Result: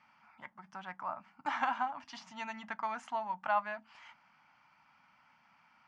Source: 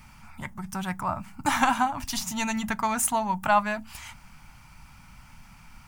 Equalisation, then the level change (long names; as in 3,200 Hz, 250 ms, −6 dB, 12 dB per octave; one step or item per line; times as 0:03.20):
loudspeaker in its box 400–4,100 Hz, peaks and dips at 400 Hz −7 dB, 2,500 Hz −4 dB, 3,800 Hz −9 dB
−9.0 dB